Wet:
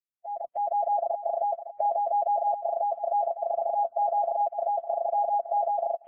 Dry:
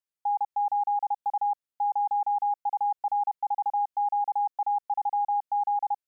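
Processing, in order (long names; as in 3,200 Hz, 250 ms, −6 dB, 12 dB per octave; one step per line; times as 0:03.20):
fade in at the beginning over 0.87 s
dynamic equaliser 650 Hz, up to +3 dB, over −37 dBFS, Q 1.2
formants moved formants −4 semitones
on a send: feedback echo with a high-pass in the loop 558 ms, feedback 29%, high-pass 790 Hz, level −7.5 dB
on the sum: MP3 16 kbit/s 8,000 Hz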